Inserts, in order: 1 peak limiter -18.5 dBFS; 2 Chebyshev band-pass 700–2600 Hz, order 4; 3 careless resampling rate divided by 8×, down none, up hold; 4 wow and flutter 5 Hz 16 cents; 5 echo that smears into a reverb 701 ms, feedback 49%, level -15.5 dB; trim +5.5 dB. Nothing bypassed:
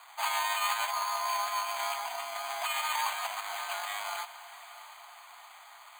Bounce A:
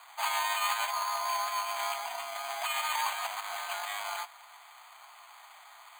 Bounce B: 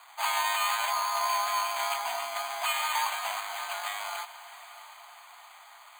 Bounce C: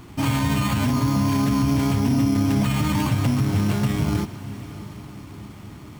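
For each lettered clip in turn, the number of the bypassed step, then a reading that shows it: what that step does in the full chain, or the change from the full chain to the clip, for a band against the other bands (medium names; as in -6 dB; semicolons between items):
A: 5, echo-to-direct -14.5 dB to none; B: 1, mean gain reduction 1.5 dB; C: 2, 500 Hz band +8.0 dB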